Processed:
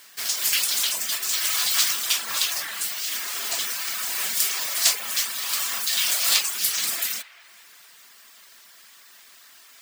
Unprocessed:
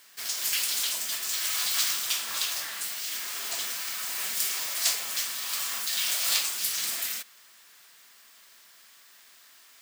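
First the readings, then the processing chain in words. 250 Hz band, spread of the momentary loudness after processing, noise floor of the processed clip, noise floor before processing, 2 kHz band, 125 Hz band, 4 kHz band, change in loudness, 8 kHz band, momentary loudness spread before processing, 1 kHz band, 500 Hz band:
+5.0 dB, 7 LU, −51 dBFS, −55 dBFS, +5.0 dB, can't be measured, +5.0 dB, +5.0 dB, +5.0 dB, 7 LU, +5.0 dB, +5.0 dB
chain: reverb reduction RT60 0.63 s
on a send: delay with a band-pass on its return 193 ms, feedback 53%, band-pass 1,400 Hz, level −13.5 dB
on the sum: level +6.5 dB

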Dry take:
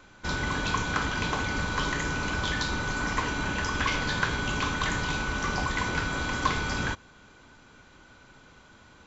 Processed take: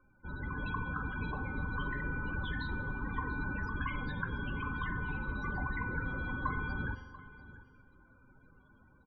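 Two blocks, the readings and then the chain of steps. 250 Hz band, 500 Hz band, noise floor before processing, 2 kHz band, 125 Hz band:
−7.0 dB, −12.0 dB, −55 dBFS, −8.5 dB, −5.0 dB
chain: low-shelf EQ 210 Hz +6 dB
automatic gain control gain up to 5.5 dB
tuned comb filter 260 Hz, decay 1.2 s, mix 70%
spectral peaks only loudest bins 32
single-tap delay 689 ms −17.5 dB
spring reverb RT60 1.4 s, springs 43 ms, chirp 70 ms, DRR 13.5 dB
level −5 dB

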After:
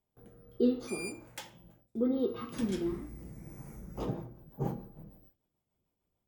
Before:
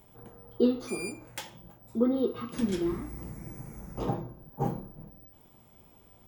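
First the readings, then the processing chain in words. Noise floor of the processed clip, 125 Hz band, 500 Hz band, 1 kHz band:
−85 dBFS, −3.5 dB, −3.5 dB, −7.5 dB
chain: rotating-speaker cabinet horn 0.7 Hz, later 6.7 Hz, at 0:03.45
hum removal 116.4 Hz, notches 27
noise gate with hold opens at −47 dBFS
level −2 dB

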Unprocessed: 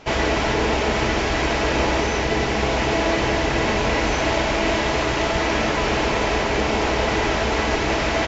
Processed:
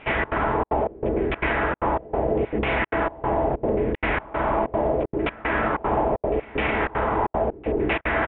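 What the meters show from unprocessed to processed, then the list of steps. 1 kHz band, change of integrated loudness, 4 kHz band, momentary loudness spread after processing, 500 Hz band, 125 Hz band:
−2.0 dB, −3.5 dB, −15.5 dB, 2 LU, −2.0 dB, −5.0 dB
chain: brickwall limiter −12.5 dBFS, peak gain reduction 4.5 dB
auto-filter low-pass saw down 0.76 Hz 360–2,500 Hz
gate pattern "xxx.xxxx.xx..x" 190 BPM −60 dB
echo ahead of the sound 258 ms −19 dB
downsampling to 8,000 Hz
level −2.5 dB

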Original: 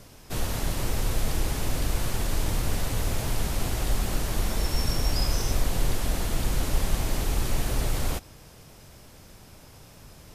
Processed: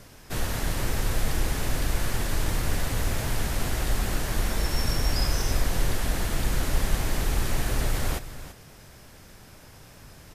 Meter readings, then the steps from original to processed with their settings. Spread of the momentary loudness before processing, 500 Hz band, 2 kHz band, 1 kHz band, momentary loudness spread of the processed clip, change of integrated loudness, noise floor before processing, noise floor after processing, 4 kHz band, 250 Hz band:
5 LU, +0.5 dB, +3.5 dB, +1.0 dB, 7 LU, +0.5 dB, −50 dBFS, −49 dBFS, +0.5 dB, 0.0 dB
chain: parametric band 1,700 Hz +5 dB 0.69 octaves
single-tap delay 336 ms −13.5 dB

